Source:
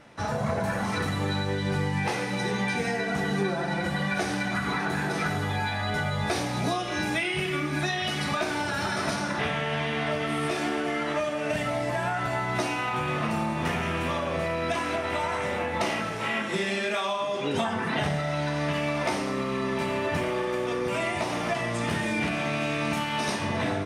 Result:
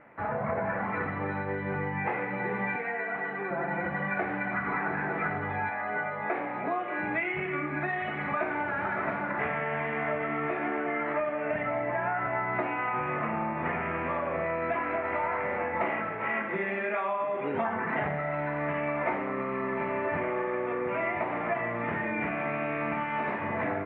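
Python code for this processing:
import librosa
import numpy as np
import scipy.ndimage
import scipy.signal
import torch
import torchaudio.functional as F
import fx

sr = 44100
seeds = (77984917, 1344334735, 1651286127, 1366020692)

y = fx.highpass(x, sr, hz=610.0, slope=6, at=(2.76, 3.51))
y = fx.bandpass_edges(y, sr, low_hz=240.0, high_hz=fx.line((5.69, 2800.0), (7.01, 4400.0)), at=(5.69, 7.01), fade=0.02)
y = scipy.signal.sosfilt(scipy.signal.ellip(4, 1.0, 80, 2200.0, 'lowpass', fs=sr, output='sos'), y)
y = fx.low_shelf(y, sr, hz=200.0, db=-10.0)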